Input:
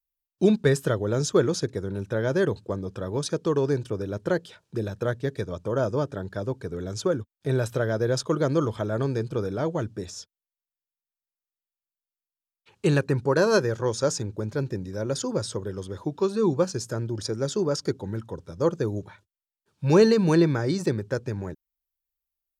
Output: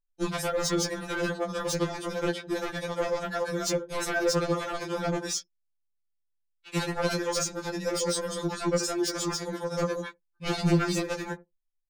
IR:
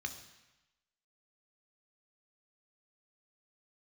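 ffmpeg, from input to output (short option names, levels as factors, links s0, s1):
-filter_complex "[0:a]equalizer=f=170:t=o:w=2.7:g=-15,asplit=2[s0][s1];[s1]adelay=153,lowpass=f=1200:p=1,volume=0.0891,asplit=2[s2][s3];[s3]adelay=153,lowpass=f=1200:p=1,volume=0.32[s4];[s0][s2][s4]amix=inputs=3:normalize=0,acrossover=split=180[s5][s6];[s6]acompressor=threshold=0.0126:ratio=4[s7];[s5][s7]amix=inputs=2:normalize=0,adynamicequalizer=threshold=0.001:dfrequency=300:dqfactor=4.1:tfrequency=300:tqfactor=4.1:attack=5:release=100:ratio=0.375:range=1.5:mode=cutabove:tftype=bell,anlmdn=0.00001,asplit=2[s8][s9];[s9]adelay=31,volume=0.501[s10];[s8][s10]amix=inputs=2:normalize=0,atempo=1.9,aeval=exprs='0.0562*sin(PI/2*2.51*val(0)/0.0562)':c=same,afftfilt=real='re*2.83*eq(mod(b,8),0)':imag='im*2.83*eq(mod(b,8),0)':win_size=2048:overlap=0.75,volume=1.68"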